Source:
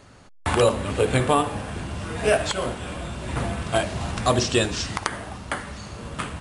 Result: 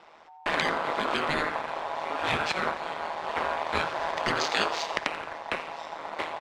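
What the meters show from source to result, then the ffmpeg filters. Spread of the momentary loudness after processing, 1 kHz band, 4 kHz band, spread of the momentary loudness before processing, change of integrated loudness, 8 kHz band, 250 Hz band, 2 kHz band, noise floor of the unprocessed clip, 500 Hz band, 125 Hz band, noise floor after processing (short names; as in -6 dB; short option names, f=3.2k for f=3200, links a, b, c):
8 LU, -1.0 dB, -3.0 dB, 12 LU, -4.5 dB, -11.5 dB, -10.0 dB, +0.5 dB, -47 dBFS, -8.5 dB, -17.5 dB, -50 dBFS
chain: -filter_complex "[0:a]aeval=exprs='val(0)*sin(2*PI*830*n/s)':c=same,acrossover=split=360 5200:gain=0.0708 1 0.178[a][b][c];[a][b][c]amix=inputs=3:normalize=0,aeval=exprs='val(0)*sin(2*PI*79*n/s)':c=same,lowshelf=f=240:g=9.5,asplit=2[d][e];[e]asplit=4[f][g][h][i];[f]adelay=87,afreqshift=88,volume=-17dB[j];[g]adelay=174,afreqshift=176,volume=-23.2dB[k];[h]adelay=261,afreqshift=264,volume=-29.4dB[l];[i]adelay=348,afreqshift=352,volume=-35.6dB[m];[j][k][l][m]amix=inputs=4:normalize=0[n];[d][n]amix=inputs=2:normalize=0,afftfilt=real='re*lt(hypot(re,im),0.158)':imag='im*lt(hypot(re,im),0.158)':win_size=1024:overlap=0.75,lowpass=7.7k,asplit=2[o][p];[p]aeval=exprs='sgn(val(0))*max(abs(val(0))-0.00708,0)':c=same,volume=-9.5dB[q];[o][q]amix=inputs=2:normalize=0,volume=2.5dB"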